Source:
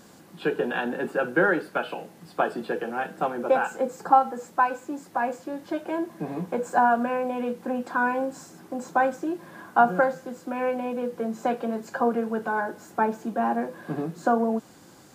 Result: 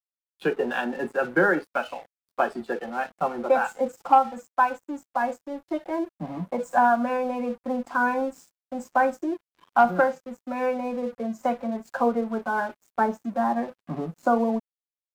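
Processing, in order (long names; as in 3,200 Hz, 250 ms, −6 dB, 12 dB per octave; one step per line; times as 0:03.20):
noise reduction from a noise print of the clip's start 14 dB
harmonic generator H 5 −28 dB, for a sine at −4 dBFS
dead-zone distortion −45.5 dBFS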